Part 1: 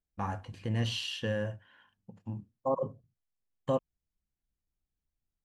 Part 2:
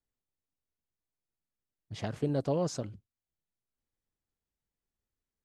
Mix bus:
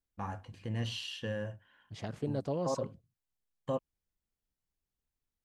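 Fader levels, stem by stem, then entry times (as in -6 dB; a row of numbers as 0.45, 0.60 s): -4.5, -4.5 dB; 0.00, 0.00 s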